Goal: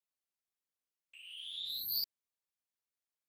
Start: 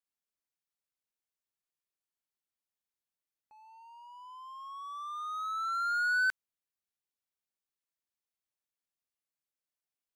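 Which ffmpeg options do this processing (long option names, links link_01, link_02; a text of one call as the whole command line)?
ffmpeg -i in.wav -af "aeval=exprs='0.0794*(cos(1*acos(clip(val(0)/0.0794,-1,1)))-cos(1*PI/2))+0.0178*(cos(3*acos(clip(val(0)/0.0794,-1,1)))-cos(3*PI/2))+0.0316*(cos(7*acos(clip(val(0)/0.0794,-1,1)))-cos(7*PI/2))+0.00112*(cos(8*acos(clip(val(0)/0.0794,-1,1)))-cos(8*PI/2))':channel_layout=same,afftfilt=real='hypot(re,im)*cos(2*PI*random(0))':imag='hypot(re,im)*sin(2*PI*random(1))':win_size=512:overlap=0.75,asetrate=136269,aresample=44100" out.wav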